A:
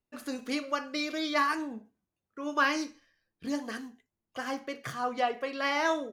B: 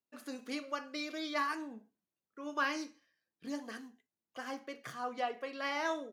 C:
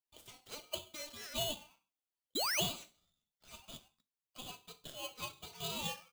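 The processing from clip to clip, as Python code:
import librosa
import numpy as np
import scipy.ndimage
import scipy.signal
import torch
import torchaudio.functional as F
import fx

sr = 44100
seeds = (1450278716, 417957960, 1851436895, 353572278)

y1 = scipy.signal.sosfilt(scipy.signal.butter(2, 160.0, 'highpass', fs=sr, output='sos'), x)
y1 = y1 * librosa.db_to_amplitude(-7.0)
y2 = fx.spec_paint(y1, sr, seeds[0], shape='rise', start_s=2.35, length_s=0.26, low_hz=2000.0, high_hz=4800.0, level_db=-31.0)
y2 = fx.ladder_highpass(y2, sr, hz=820.0, resonance_pct=25)
y2 = y2 * np.sign(np.sin(2.0 * np.pi * 1800.0 * np.arange(len(y2)) / sr))
y2 = y2 * librosa.db_to_amplitude(2.0)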